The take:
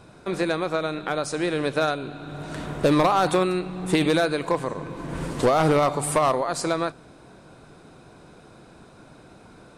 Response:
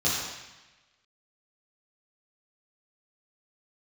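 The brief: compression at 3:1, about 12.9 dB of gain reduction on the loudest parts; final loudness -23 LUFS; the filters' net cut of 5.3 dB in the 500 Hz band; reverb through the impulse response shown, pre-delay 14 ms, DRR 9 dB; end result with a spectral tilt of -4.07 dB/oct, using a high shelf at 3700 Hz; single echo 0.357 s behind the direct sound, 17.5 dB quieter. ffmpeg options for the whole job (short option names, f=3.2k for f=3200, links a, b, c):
-filter_complex "[0:a]equalizer=f=500:t=o:g=-7,highshelf=f=3.7k:g=7.5,acompressor=threshold=-36dB:ratio=3,aecho=1:1:357:0.133,asplit=2[a][b];[1:a]atrim=start_sample=2205,adelay=14[c];[b][c]afir=irnorm=-1:irlink=0,volume=-21dB[d];[a][d]amix=inputs=2:normalize=0,volume=12dB"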